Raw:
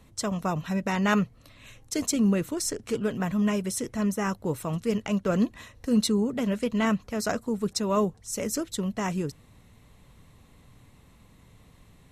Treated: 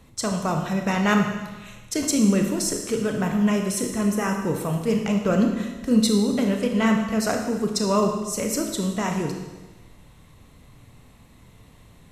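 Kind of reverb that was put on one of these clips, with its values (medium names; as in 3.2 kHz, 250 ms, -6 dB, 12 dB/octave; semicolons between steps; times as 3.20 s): Schroeder reverb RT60 1.2 s, combs from 25 ms, DRR 3 dB; trim +3 dB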